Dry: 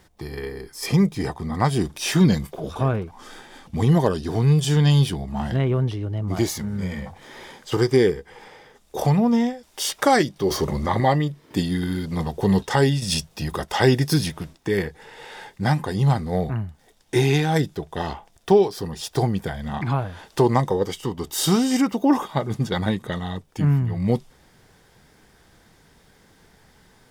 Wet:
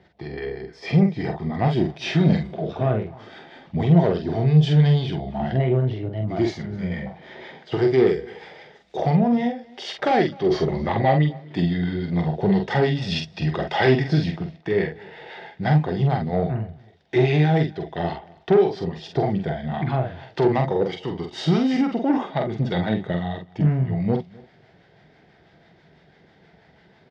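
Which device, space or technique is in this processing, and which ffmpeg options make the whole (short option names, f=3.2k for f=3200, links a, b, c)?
guitar amplifier with harmonic tremolo: -filter_complex "[0:a]asettb=1/sr,asplit=3[a][b][c];[a]atrim=end=8.064[d];[b]atrim=start=8.06:end=8.97,asetpts=PTS-STARTPTS,afade=t=in:d=0.004:c=qsin,afade=t=out:st=0.906:d=0.004:c=qsin,aemphasis=mode=production:type=75kf[e];[c]atrim=start=8.966[f];[d][e]acrossfade=d=0.004:c1=hsin:c2=qsin[g];[g][f]acrossfade=d=0.004:c1=qsin:c2=hsin,acrossover=split=750[h][i];[h]aeval=exprs='val(0)*(1-0.5/2+0.5/2*cos(2*PI*6.1*n/s))':c=same[j];[i]aeval=exprs='val(0)*(1-0.5/2-0.5/2*cos(2*PI*6.1*n/s))':c=same[k];[j][k]amix=inputs=2:normalize=0,asoftclip=type=tanh:threshold=-15.5dB,highpass=78,equalizer=f=160:t=q:w=4:g=7,equalizer=f=370:t=q:w=4:g=5,equalizer=f=670:t=q:w=4:g=9,equalizer=f=1.1k:t=q:w=4:g=-6,equalizer=f=2k:t=q:w=4:g=4,lowpass=f=4.2k:w=0.5412,lowpass=f=4.2k:w=1.3066,asplit=2[l][m];[m]adelay=46,volume=-5dB[n];[l][n]amix=inputs=2:normalize=0,asettb=1/sr,asplit=3[o][p][q];[o]atrim=end=12.954[r];[p]atrim=start=12.95:end=14,asetpts=PTS-STARTPTS,afade=t=in:d=0.004:c=qsin,afade=t=out:st=1.046:d=0.004:c=qsin,equalizer=f=2.9k:t=o:w=3:g=4[s];[q]atrim=start=13.996[t];[r][s]acrossfade=d=0.004:c1=hsin:c2=qsin[u];[u][t]acrossfade=d=0.004:c1=qsin:c2=hsin,aecho=1:1:256:0.0631"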